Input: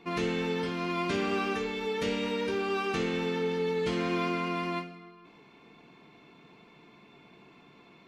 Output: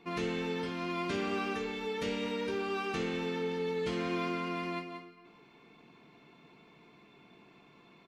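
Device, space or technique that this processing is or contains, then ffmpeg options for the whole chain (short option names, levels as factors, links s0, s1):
ducked delay: -filter_complex "[0:a]asplit=3[s0][s1][s2];[s1]adelay=180,volume=0.447[s3];[s2]apad=whole_len=364027[s4];[s3][s4]sidechaincompress=threshold=0.01:ratio=8:attack=16:release=175[s5];[s0][s5]amix=inputs=2:normalize=0,volume=0.631"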